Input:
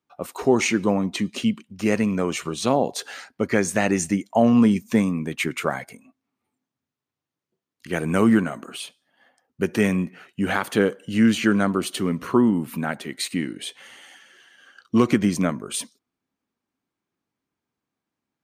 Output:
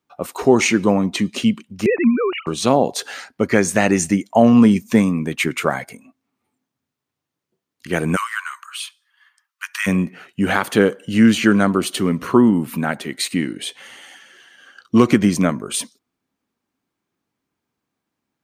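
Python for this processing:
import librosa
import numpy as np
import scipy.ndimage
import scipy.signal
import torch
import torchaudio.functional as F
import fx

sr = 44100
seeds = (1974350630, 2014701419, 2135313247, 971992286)

y = fx.sine_speech(x, sr, at=(1.86, 2.47))
y = fx.steep_highpass(y, sr, hz=1000.0, slope=72, at=(8.15, 9.86), fade=0.02)
y = y * librosa.db_to_amplitude(5.0)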